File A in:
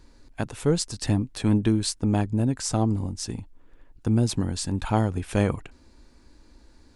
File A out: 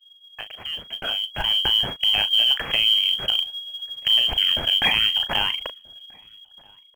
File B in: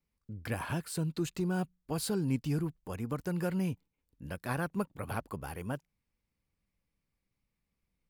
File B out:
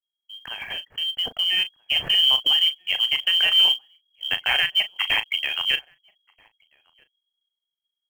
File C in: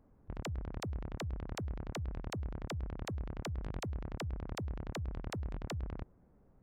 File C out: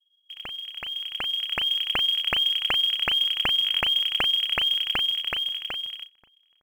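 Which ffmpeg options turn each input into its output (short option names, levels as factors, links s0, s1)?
-filter_complex "[0:a]anlmdn=0.631,lowpass=f=2800:t=q:w=0.5098,lowpass=f=2800:t=q:w=0.6013,lowpass=f=2800:t=q:w=0.9,lowpass=f=2800:t=q:w=2.563,afreqshift=-3300,lowshelf=f=87:g=-8,acompressor=threshold=0.0355:ratio=2,acrossover=split=1200[s0][s1];[s1]alimiter=level_in=1.41:limit=0.0631:level=0:latency=1:release=70,volume=0.708[s2];[s0][s2]amix=inputs=2:normalize=0,dynaudnorm=f=130:g=21:m=5.01,aemphasis=mode=reproduction:type=riaa,asplit=2[s3][s4];[s4]adelay=37,volume=0.266[s5];[s3][s5]amix=inputs=2:normalize=0,asplit=2[s6][s7];[s7]adelay=1283,volume=0.0447,highshelf=f=4000:g=-28.9[s8];[s6][s8]amix=inputs=2:normalize=0,acrusher=bits=6:mode=log:mix=0:aa=0.000001,volume=2.11"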